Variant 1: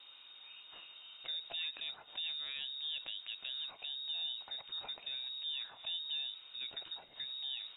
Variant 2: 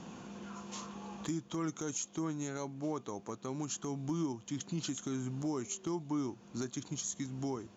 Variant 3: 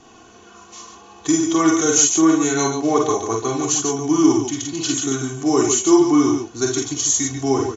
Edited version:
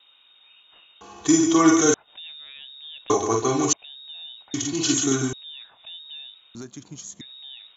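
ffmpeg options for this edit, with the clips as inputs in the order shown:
-filter_complex "[2:a]asplit=3[a][b][c];[0:a]asplit=5[d][e][f][g][h];[d]atrim=end=1.012[i];[a]atrim=start=1.008:end=1.942[j];[e]atrim=start=1.938:end=3.102[k];[b]atrim=start=3.098:end=3.732[l];[f]atrim=start=3.728:end=4.542[m];[c]atrim=start=4.538:end=5.332[n];[g]atrim=start=5.328:end=6.552[o];[1:a]atrim=start=6.548:end=7.212[p];[h]atrim=start=7.208[q];[i][j]acrossfade=d=0.004:c1=hsin:c2=hsin[r];[r][k]acrossfade=d=0.004:c1=hsin:c2=hsin[s];[s][l]acrossfade=d=0.004:c1=hsin:c2=hsin[t];[t][m]acrossfade=d=0.004:c1=hsin:c2=hsin[u];[u][n]acrossfade=d=0.004:c1=hsin:c2=hsin[v];[v][o]acrossfade=d=0.004:c1=hsin:c2=hsin[w];[w][p]acrossfade=d=0.004:c1=hsin:c2=hsin[x];[x][q]acrossfade=d=0.004:c1=hsin:c2=hsin"

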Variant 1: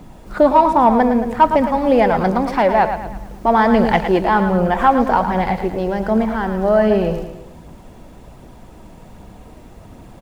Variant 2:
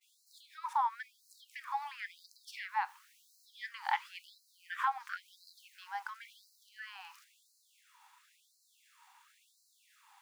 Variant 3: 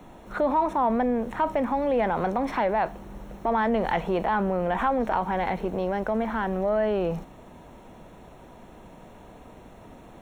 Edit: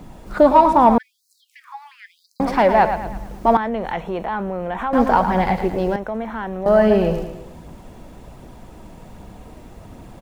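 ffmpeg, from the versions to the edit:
-filter_complex "[2:a]asplit=2[a][b];[0:a]asplit=4[c][d][e][f];[c]atrim=end=0.982[g];[1:a]atrim=start=0.978:end=2.402[h];[d]atrim=start=2.398:end=3.572[i];[a]atrim=start=3.568:end=4.932[j];[e]atrim=start=4.928:end=5.962[k];[b]atrim=start=5.958:end=6.662[l];[f]atrim=start=6.658[m];[g][h]acrossfade=d=0.004:c1=hsin:c2=hsin[n];[n][i]acrossfade=d=0.004:c1=hsin:c2=hsin[o];[o][j]acrossfade=d=0.004:c1=hsin:c2=hsin[p];[p][k]acrossfade=d=0.004:c1=hsin:c2=hsin[q];[q][l]acrossfade=d=0.004:c1=hsin:c2=hsin[r];[r][m]acrossfade=d=0.004:c1=hsin:c2=hsin"

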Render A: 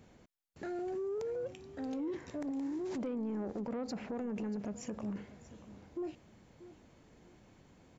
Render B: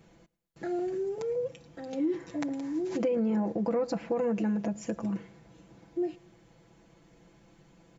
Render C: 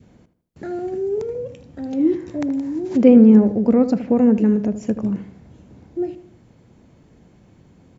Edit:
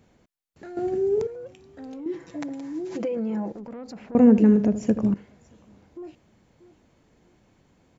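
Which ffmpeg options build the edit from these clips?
-filter_complex "[2:a]asplit=2[a][b];[0:a]asplit=4[c][d][e][f];[c]atrim=end=0.772[g];[a]atrim=start=0.768:end=1.272[h];[d]atrim=start=1.268:end=2.062[i];[1:a]atrim=start=2.058:end=3.522[j];[e]atrim=start=3.518:end=4.152[k];[b]atrim=start=4.148:end=5.142[l];[f]atrim=start=5.138[m];[g][h]acrossfade=d=0.004:c1=hsin:c2=hsin[n];[n][i]acrossfade=d=0.004:c1=hsin:c2=hsin[o];[o][j]acrossfade=d=0.004:c1=hsin:c2=hsin[p];[p][k]acrossfade=d=0.004:c1=hsin:c2=hsin[q];[q][l]acrossfade=d=0.004:c1=hsin:c2=hsin[r];[r][m]acrossfade=d=0.004:c1=hsin:c2=hsin"

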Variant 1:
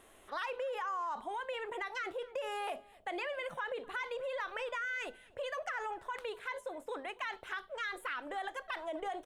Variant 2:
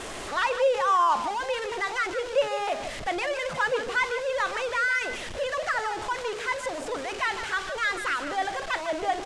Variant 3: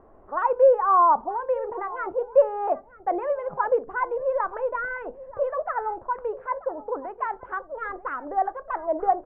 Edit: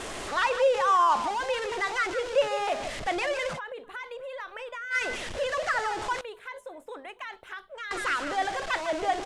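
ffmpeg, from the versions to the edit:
-filter_complex "[0:a]asplit=2[a][b];[1:a]asplit=3[c][d][e];[c]atrim=end=3.6[f];[a]atrim=start=3.54:end=4.96[g];[d]atrim=start=4.9:end=6.212[h];[b]atrim=start=6.208:end=7.912[i];[e]atrim=start=7.908[j];[f][g]acrossfade=d=0.06:c1=tri:c2=tri[k];[k][h]acrossfade=d=0.06:c1=tri:c2=tri[l];[l][i]acrossfade=d=0.004:c1=hsin:c2=hsin[m];[m][j]acrossfade=d=0.004:c1=hsin:c2=hsin"

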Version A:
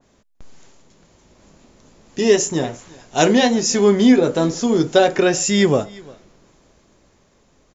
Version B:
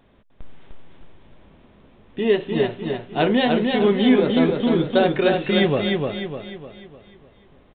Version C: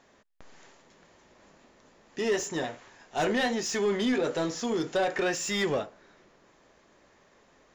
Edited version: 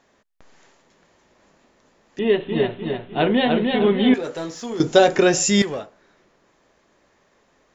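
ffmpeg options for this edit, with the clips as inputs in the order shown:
-filter_complex "[2:a]asplit=3[a][b][c];[a]atrim=end=2.192[d];[1:a]atrim=start=2.188:end=4.142[e];[b]atrim=start=4.138:end=4.802[f];[0:a]atrim=start=4.798:end=5.622[g];[c]atrim=start=5.618[h];[d][e]acrossfade=d=0.004:c1=hsin:c2=hsin[i];[i][f]acrossfade=d=0.004:c1=hsin:c2=hsin[j];[j][g]acrossfade=d=0.004:c1=hsin:c2=hsin[k];[k][h]acrossfade=d=0.004:c1=hsin:c2=hsin"

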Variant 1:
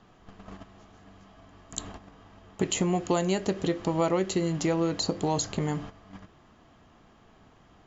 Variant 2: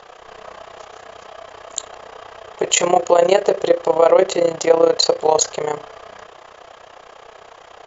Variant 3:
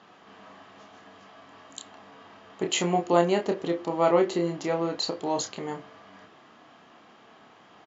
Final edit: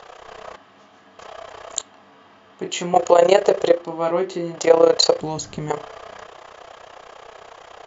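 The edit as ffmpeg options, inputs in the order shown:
-filter_complex "[2:a]asplit=3[a][b][c];[1:a]asplit=5[d][e][f][g][h];[d]atrim=end=0.562[i];[a]atrim=start=0.558:end=1.192[j];[e]atrim=start=1.188:end=1.812[k];[b]atrim=start=1.808:end=2.942[l];[f]atrim=start=2.938:end=3.86[m];[c]atrim=start=3.7:end=4.66[n];[g]atrim=start=4.5:end=5.212[o];[0:a]atrim=start=5.208:end=5.702[p];[h]atrim=start=5.698[q];[i][j]acrossfade=d=0.004:c1=hsin:c2=hsin[r];[r][k]acrossfade=d=0.004:c1=hsin:c2=hsin[s];[s][l]acrossfade=d=0.004:c1=hsin:c2=hsin[t];[t][m]acrossfade=d=0.004:c1=hsin:c2=hsin[u];[u][n]acrossfade=d=0.16:c1=tri:c2=tri[v];[v][o]acrossfade=d=0.16:c1=tri:c2=tri[w];[w][p]acrossfade=d=0.004:c1=hsin:c2=hsin[x];[x][q]acrossfade=d=0.004:c1=hsin:c2=hsin"

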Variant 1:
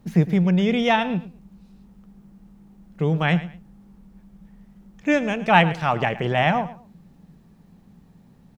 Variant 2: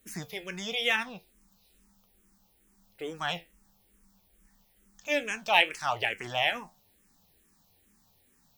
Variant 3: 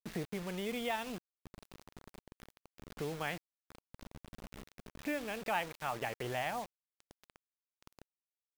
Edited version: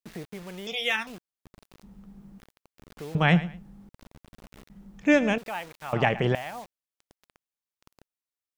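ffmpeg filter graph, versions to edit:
-filter_complex "[0:a]asplit=4[a][b][c][d];[2:a]asplit=6[e][f][g][h][i][j];[e]atrim=end=0.672[k];[1:a]atrim=start=0.668:end=1.072[l];[f]atrim=start=1.068:end=1.832[m];[a]atrim=start=1.828:end=2.402[n];[g]atrim=start=2.398:end=3.152[o];[b]atrim=start=3.148:end=3.892[p];[h]atrim=start=3.888:end=4.702[q];[c]atrim=start=4.698:end=5.382[r];[i]atrim=start=5.378:end=5.932[s];[d]atrim=start=5.928:end=6.352[t];[j]atrim=start=6.348[u];[k][l]acrossfade=d=0.004:c1=hsin:c2=hsin[v];[v][m]acrossfade=d=0.004:c1=hsin:c2=hsin[w];[w][n]acrossfade=d=0.004:c1=hsin:c2=hsin[x];[x][o]acrossfade=d=0.004:c1=hsin:c2=hsin[y];[y][p]acrossfade=d=0.004:c1=hsin:c2=hsin[z];[z][q]acrossfade=d=0.004:c1=hsin:c2=hsin[aa];[aa][r]acrossfade=d=0.004:c1=hsin:c2=hsin[ab];[ab][s]acrossfade=d=0.004:c1=hsin:c2=hsin[ac];[ac][t]acrossfade=d=0.004:c1=hsin:c2=hsin[ad];[ad][u]acrossfade=d=0.004:c1=hsin:c2=hsin"

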